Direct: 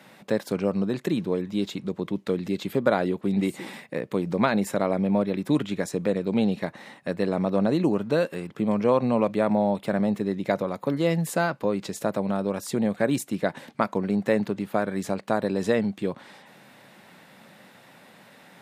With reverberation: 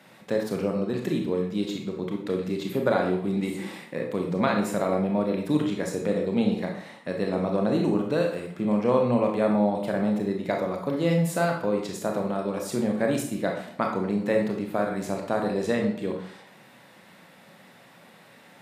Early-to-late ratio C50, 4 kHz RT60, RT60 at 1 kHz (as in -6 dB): 5.0 dB, 0.50 s, 0.60 s